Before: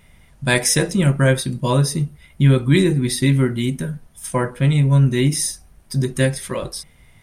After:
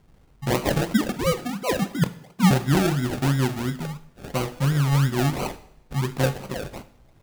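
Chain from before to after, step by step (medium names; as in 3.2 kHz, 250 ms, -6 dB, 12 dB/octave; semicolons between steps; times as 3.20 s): 0.94–2.51 s: formants replaced by sine waves; decimation with a swept rate 35×, swing 60% 2.9 Hz; two-slope reverb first 0.65 s, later 2.1 s, from -25 dB, DRR 11.5 dB; trim -6 dB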